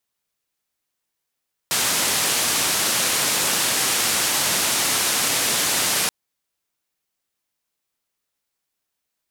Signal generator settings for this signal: noise band 120–11000 Hz, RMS -21 dBFS 4.38 s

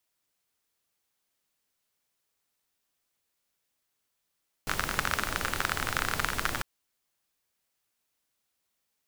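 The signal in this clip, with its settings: rain from filtered ticks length 1.95 s, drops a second 31, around 1400 Hz, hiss -2 dB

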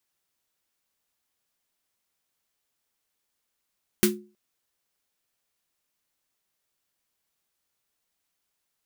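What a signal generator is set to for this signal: snare drum length 0.32 s, tones 210 Hz, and 360 Hz, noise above 1100 Hz, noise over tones -1 dB, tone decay 0.36 s, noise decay 0.17 s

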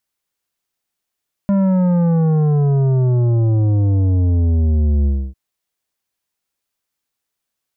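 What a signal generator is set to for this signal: sub drop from 200 Hz, over 3.85 s, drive 10 dB, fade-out 0.28 s, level -13 dB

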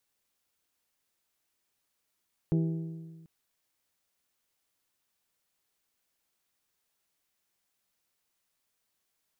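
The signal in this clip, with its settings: metal hit bell, length 0.74 s, lowest mode 163 Hz, modes 6, decay 1.58 s, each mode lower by 6.5 dB, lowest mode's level -22.5 dB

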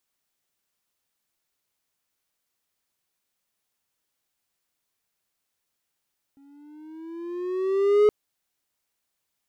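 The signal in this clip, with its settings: gliding synth tone triangle, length 1.72 s, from 275 Hz, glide +7.5 st, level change +38 dB, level -11 dB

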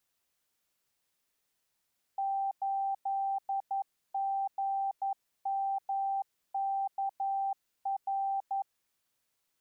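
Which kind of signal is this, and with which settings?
Morse "8GMKR" 11 wpm 784 Hz -29 dBFS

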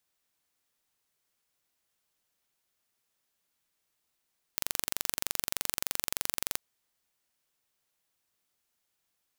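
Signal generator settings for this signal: pulse train 23.3/s, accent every 0, -2.5 dBFS 2.01 s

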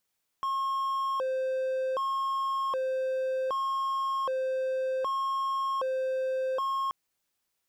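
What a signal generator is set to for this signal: siren hi-lo 522–1080 Hz 0.65/s triangle -25 dBFS 6.48 s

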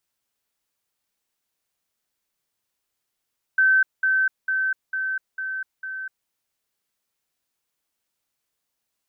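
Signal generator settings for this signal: level ladder 1540 Hz -14 dBFS, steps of -3 dB, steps 6, 0.25 s 0.20 s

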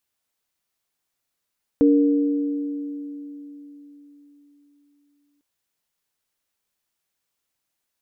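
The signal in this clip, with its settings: sine partials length 3.60 s, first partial 288 Hz, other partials 465 Hz, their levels -6 dB, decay 4.01 s, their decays 2.47 s, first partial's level -12 dB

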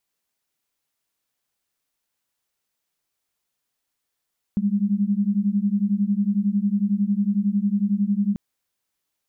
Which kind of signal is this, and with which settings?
beating tones 197 Hz, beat 11 Hz, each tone -21.5 dBFS 3.79 s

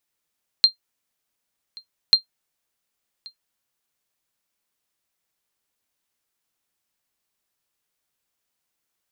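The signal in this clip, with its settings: sonar ping 4180 Hz, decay 0.11 s, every 1.49 s, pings 2, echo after 1.13 s, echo -26 dB -4 dBFS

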